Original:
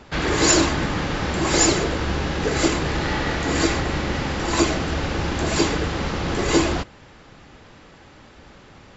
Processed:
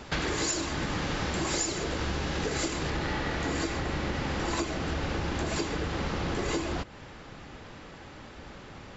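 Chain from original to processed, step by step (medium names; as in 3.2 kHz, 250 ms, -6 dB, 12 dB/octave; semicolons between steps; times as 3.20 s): treble shelf 4.1 kHz +5.5 dB, from 2.90 s -2 dB; compression 12:1, threshold -28 dBFS, peak gain reduction 19 dB; trim +1 dB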